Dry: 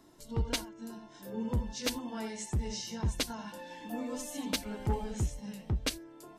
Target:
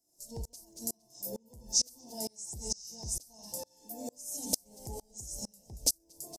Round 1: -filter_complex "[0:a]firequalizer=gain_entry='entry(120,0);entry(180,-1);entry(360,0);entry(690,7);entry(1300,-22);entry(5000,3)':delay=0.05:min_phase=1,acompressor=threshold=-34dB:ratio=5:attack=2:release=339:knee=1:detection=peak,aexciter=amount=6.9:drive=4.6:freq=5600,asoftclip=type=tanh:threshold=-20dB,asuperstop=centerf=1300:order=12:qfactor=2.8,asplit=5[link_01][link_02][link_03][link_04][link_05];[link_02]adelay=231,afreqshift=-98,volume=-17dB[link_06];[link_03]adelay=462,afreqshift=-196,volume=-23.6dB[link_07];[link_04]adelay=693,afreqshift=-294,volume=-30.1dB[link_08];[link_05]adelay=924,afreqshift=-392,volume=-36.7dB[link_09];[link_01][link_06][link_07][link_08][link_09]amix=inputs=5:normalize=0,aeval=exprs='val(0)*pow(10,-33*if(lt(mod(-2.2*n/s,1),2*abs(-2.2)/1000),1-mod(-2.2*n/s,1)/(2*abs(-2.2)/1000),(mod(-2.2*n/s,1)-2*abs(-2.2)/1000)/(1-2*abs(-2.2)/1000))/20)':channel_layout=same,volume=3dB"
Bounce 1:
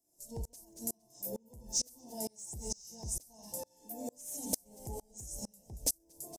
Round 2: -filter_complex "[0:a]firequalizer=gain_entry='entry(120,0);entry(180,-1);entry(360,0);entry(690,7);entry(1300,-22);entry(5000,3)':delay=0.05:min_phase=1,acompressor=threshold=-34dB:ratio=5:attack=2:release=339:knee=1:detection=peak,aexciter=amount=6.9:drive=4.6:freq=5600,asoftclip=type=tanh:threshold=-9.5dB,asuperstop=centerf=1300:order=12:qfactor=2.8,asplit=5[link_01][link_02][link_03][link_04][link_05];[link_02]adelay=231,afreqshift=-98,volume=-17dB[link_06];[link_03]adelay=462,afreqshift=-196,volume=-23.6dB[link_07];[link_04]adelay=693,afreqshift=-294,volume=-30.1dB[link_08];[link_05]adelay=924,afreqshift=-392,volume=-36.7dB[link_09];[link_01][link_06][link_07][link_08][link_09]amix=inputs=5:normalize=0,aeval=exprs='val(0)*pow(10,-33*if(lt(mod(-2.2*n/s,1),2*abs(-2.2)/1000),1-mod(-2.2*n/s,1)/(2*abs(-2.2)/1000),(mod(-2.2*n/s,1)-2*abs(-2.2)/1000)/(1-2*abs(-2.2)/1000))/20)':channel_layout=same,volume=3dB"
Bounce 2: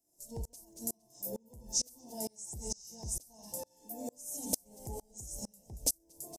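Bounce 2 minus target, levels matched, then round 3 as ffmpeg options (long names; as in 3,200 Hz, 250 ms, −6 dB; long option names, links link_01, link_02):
4,000 Hz band −3.5 dB
-filter_complex "[0:a]firequalizer=gain_entry='entry(120,0);entry(180,-1);entry(360,0);entry(690,7);entry(1300,-22);entry(5000,3)':delay=0.05:min_phase=1,acompressor=threshold=-34dB:ratio=5:attack=2:release=339:knee=1:detection=peak,aexciter=amount=6.9:drive=4.6:freq=5600,asoftclip=type=tanh:threshold=-9.5dB,asuperstop=centerf=1300:order=12:qfactor=2.8,equalizer=frequency=4700:width_type=o:width=0.89:gain=7.5,asplit=5[link_01][link_02][link_03][link_04][link_05];[link_02]adelay=231,afreqshift=-98,volume=-17dB[link_06];[link_03]adelay=462,afreqshift=-196,volume=-23.6dB[link_07];[link_04]adelay=693,afreqshift=-294,volume=-30.1dB[link_08];[link_05]adelay=924,afreqshift=-392,volume=-36.7dB[link_09];[link_01][link_06][link_07][link_08][link_09]amix=inputs=5:normalize=0,aeval=exprs='val(0)*pow(10,-33*if(lt(mod(-2.2*n/s,1),2*abs(-2.2)/1000),1-mod(-2.2*n/s,1)/(2*abs(-2.2)/1000),(mod(-2.2*n/s,1)-2*abs(-2.2)/1000)/(1-2*abs(-2.2)/1000))/20)':channel_layout=same,volume=3dB"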